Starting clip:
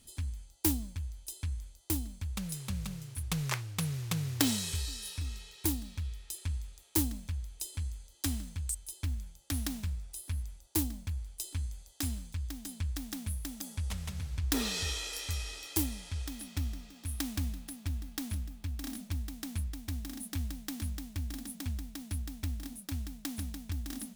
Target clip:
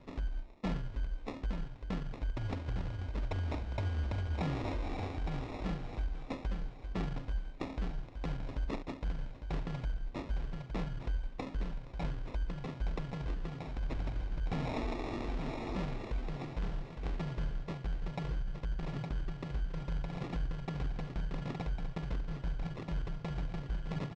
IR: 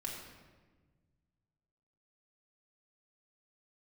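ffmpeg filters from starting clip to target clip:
-filter_complex "[0:a]asplit=2[a][b];[b]aecho=0:1:39|75:0.251|0.168[c];[a][c]amix=inputs=2:normalize=0,acrusher=samples=17:mix=1:aa=0.000001,asoftclip=type=tanh:threshold=-23.5dB,lowpass=7.2k,equalizer=f=450:t=o:w=0.28:g=5,asplit=2[d][e];[e]aecho=0:1:863|1726:0.335|0.0536[f];[d][f]amix=inputs=2:normalize=0,alimiter=level_in=7.5dB:limit=-24dB:level=0:latency=1:release=215,volume=-7.5dB,asetrate=26222,aresample=44100,atempo=1.68179,volume=4.5dB"

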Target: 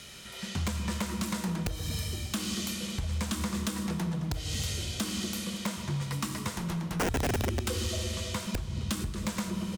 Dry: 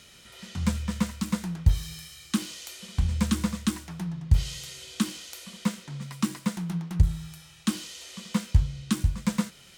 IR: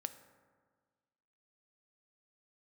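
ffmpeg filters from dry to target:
-filter_complex "[1:a]atrim=start_sample=2205,asetrate=31752,aresample=44100[a];[0:a][a]afir=irnorm=-1:irlink=0,acompressor=threshold=-27dB:ratio=5,asettb=1/sr,asplit=3[b][c][d];[b]atrim=end=5.774[e];[c]atrim=start=5.77:end=8.47,asetpts=PTS-STARTPTS,afade=t=in:d=0.004:c=qsin,afade=t=out:st=2.696:d=0.004:c=qsin,lowshelf=f=130:t=q:w=3:g=11.5[f];[d]atrim=start=8.466[g];[e][f]acrossfade=d=0.004:c1=hsin:c2=qsin[h];[h][g]acrossfade=d=0.004:c1=qsin:c2=hsin,asplit=5[i][j][k][l][m];[j]adelay=231,afreqshift=140,volume=-19dB[n];[k]adelay=462,afreqshift=280,volume=-24.4dB[o];[l]adelay=693,afreqshift=420,volume=-29.7dB[p];[m]adelay=924,afreqshift=560,volume=-35.1dB[q];[i][n][o][p][q]amix=inputs=5:normalize=0,aeval=exprs='(mod(8.41*val(0)+1,2)-1)/8.41':c=same,acrossover=split=380|3000[r][s][t];[r]acompressor=threshold=-35dB:ratio=6[u];[u][s][t]amix=inputs=3:normalize=0,volume=32dB,asoftclip=hard,volume=-32dB,volume=6dB"

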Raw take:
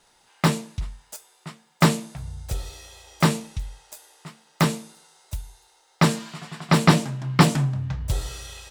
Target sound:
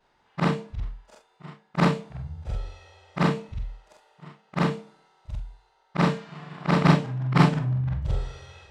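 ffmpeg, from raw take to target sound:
-af "afftfilt=real='re':imag='-im':win_size=4096:overlap=0.75,adynamicsmooth=sensitivity=1:basefreq=2.6k,volume=3dB"

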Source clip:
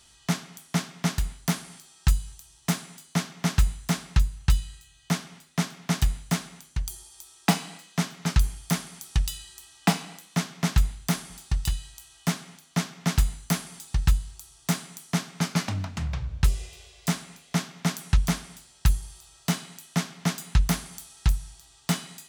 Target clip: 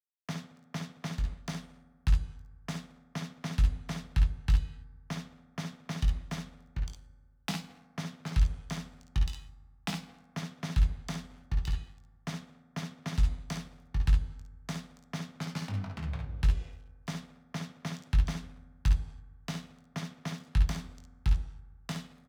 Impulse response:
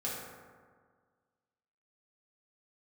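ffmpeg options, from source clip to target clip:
-filter_complex "[0:a]aemphasis=mode=reproduction:type=cd,agate=range=-33dB:threshold=-46dB:ratio=3:detection=peak,adynamicsmooth=sensitivity=4:basefreq=2.9k,highshelf=f=4.4k:g=4.5,acrossover=split=140|3000[a][b][c];[b]acompressor=threshold=-34dB:ratio=4[d];[a][d][c]amix=inputs=3:normalize=0,bandreject=f=60:t=h:w=6,bandreject=f=120:t=h:w=6,bandreject=f=180:t=h:w=6,aeval=exprs='sgn(val(0))*max(abs(val(0))-0.00473,0)':c=same,aecho=1:1:20|56|68:0.422|0.447|0.422,asplit=2[e][f];[1:a]atrim=start_sample=2205[g];[f][g]afir=irnorm=-1:irlink=0,volume=-15.5dB[h];[e][h]amix=inputs=2:normalize=0,volume=-6dB"

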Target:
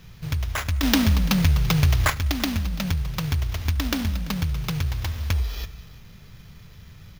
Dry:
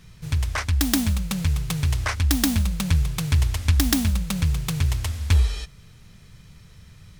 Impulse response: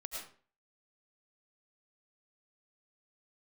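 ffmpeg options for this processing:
-filter_complex "[0:a]asplit=2[a][b];[1:a]atrim=start_sample=2205,adelay=71[c];[b][c]afir=irnorm=-1:irlink=0,volume=-16.5dB[d];[a][d]amix=inputs=2:normalize=0,acompressor=threshold=-26dB:ratio=2.5,acrusher=samples=5:mix=1:aa=0.000001,asettb=1/sr,asplit=3[e][f][g];[e]atrim=end=0.834[h];[f]atrim=start=0.83:end=2.1,asetpts=PTS-STARTPTS,afade=t=in:d=0.004:c=qsin,afade=t=out:st=1.266:d=0.004:c=qsin,acontrast=76[i];[g]atrim=start=2.096[j];[h][i]acrossfade=d=0.004:c1=hsin:c2=qsin[k];[k][j]acrossfade=d=0.004:c1=qsin:c2=hsin,aecho=1:1:338:0.106,volume=2dB"

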